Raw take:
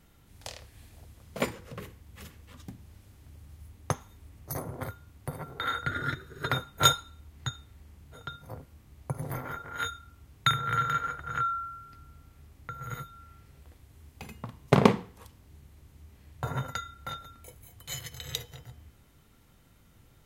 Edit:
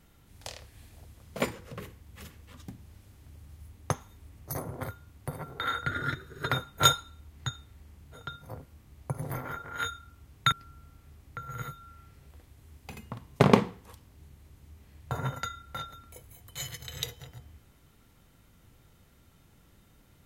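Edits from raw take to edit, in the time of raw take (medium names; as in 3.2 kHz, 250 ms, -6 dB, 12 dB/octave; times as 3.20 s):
10.52–11.84 s: delete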